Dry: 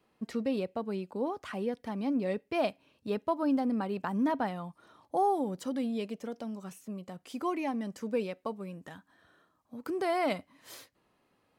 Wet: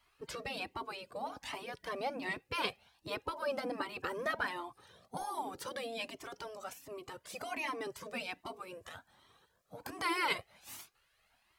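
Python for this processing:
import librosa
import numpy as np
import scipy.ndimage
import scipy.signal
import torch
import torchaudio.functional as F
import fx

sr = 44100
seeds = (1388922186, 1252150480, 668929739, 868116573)

y = fx.spec_gate(x, sr, threshold_db=-10, keep='weak')
y = fx.comb_cascade(y, sr, direction='rising', hz=1.3)
y = F.gain(torch.from_numpy(y), 10.0).numpy()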